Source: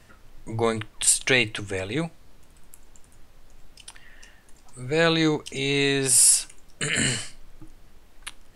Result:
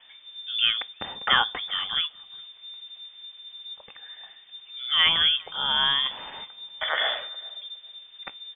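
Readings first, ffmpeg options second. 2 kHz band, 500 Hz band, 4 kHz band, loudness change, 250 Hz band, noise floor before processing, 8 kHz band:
-1.0 dB, -15.0 dB, +8.0 dB, -2.0 dB, -21.0 dB, -53 dBFS, under -40 dB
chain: -filter_complex "[0:a]lowpass=f=3100:t=q:w=0.5098,lowpass=f=3100:t=q:w=0.6013,lowpass=f=3100:t=q:w=0.9,lowpass=f=3100:t=q:w=2.563,afreqshift=-3600,asplit=2[s0][s1];[s1]adelay=410,lowpass=f=840:p=1,volume=0.1,asplit=2[s2][s3];[s3]adelay=410,lowpass=f=840:p=1,volume=0.22[s4];[s0][s2][s4]amix=inputs=3:normalize=0"

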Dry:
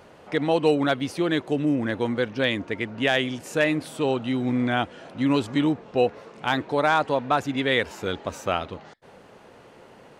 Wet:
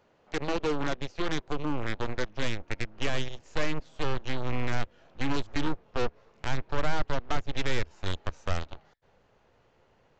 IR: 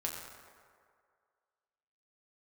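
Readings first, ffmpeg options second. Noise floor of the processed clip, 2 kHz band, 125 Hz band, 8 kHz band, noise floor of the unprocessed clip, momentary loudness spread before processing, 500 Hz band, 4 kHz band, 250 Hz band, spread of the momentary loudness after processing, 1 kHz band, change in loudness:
-65 dBFS, -8.5 dB, -3.0 dB, -3.0 dB, -50 dBFS, 8 LU, -10.5 dB, -7.0 dB, -11.0 dB, 5 LU, -9.0 dB, -9.0 dB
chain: -filter_complex "[0:a]aeval=exprs='0.355*(cos(1*acos(clip(val(0)/0.355,-1,1)))-cos(1*PI/2))+0.00631*(cos(5*acos(clip(val(0)/0.355,-1,1)))-cos(5*PI/2))+0.0398*(cos(6*acos(clip(val(0)/0.355,-1,1)))-cos(6*PI/2))+0.0631*(cos(7*acos(clip(val(0)/0.355,-1,1)))-cos(7*PI/2))+0.00794*(cos(8*acos(clip(val(0)/0.355,-1,1)))-cos(8*PI/2))':c=same,acrossover=split=490[s0][s1];[s1]acompressor=threshold=0.0355:ratio=4[s2];[s0][s2]amix=inputs=2:normalize=0,aresample=16000,asoftclip=type=tanh:threshold=0.0631,aresample=44100,asubboost=boost=4.5:cutoff=94,volume=1.12"

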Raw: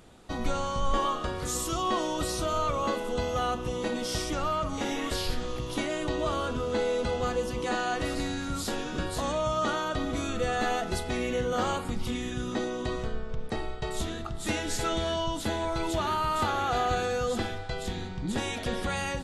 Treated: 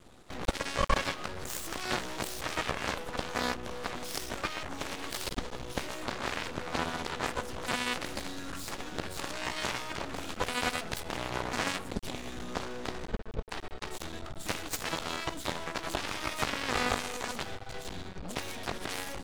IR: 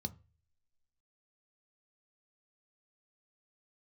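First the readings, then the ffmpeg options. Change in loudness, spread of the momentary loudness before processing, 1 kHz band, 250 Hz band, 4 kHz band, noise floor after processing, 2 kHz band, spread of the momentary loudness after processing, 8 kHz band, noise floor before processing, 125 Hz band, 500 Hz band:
-4.5 dB, 6 LU, -6.0 dB, -7.5 dB, -1.0 dB, -44 dBFS, 0.0 dB, 9 LU, -2.5 dB, -36 dBFS, -7.0 dB, -8.5 dB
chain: -af "aeval=exprs='max(val(0),0)':c=same,aeval=exprs='0.188*(cos(1*acos(clip(val(0)/0.188,-1,1)))-cos(1*PI/2))+0.0596*(cos(7*acos(clip(val(0)/0.188,-1,1)))-cos(7*PI/2))':c=same"

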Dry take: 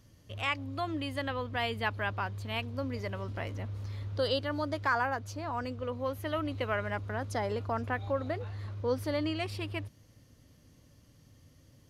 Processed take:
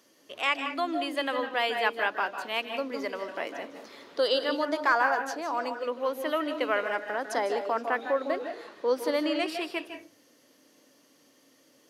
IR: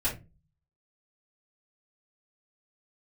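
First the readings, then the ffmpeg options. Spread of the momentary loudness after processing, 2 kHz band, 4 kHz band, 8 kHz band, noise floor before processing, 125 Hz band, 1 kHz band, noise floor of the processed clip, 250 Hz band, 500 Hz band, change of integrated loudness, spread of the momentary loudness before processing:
10 LU, +6.0 dB, +5.5 dB, +5.5 dB, -61 dBFS, under -25 dB, +6.0 dB, -62 dBFS, +2.5 dB, +6.0 dB, +5.0 dB, 7 LU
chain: -filter_complex "[0:a]highpass=f=300:w=0.5412,highpass=f=300:w=1.3066,asplit=2[s0][s1];[1:a]atrim=start_sample=2205,adelay=149[s2];[s1][s2]afir=irnorm=-1:irlink=0,volume=0.2[s3];[s0][s3]amix=inputs=2:normalize=0,volume=1.78"

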